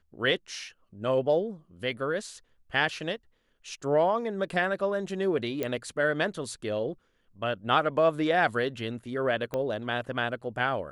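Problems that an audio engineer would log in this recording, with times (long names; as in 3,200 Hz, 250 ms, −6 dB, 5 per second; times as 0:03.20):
0:05.63: click −16 dBFS
0:09.54: click −18 dBFS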